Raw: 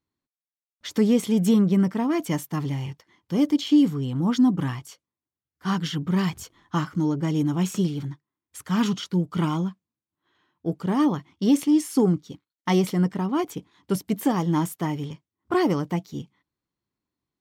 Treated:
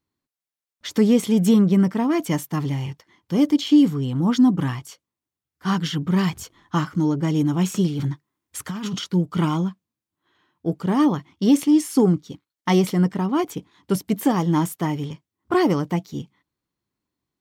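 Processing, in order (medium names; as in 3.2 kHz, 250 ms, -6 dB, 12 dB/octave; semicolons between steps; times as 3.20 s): 7.99–8.99 s: compressor with a negative ratio -29 dBFS, ratio -1; trim +3 dB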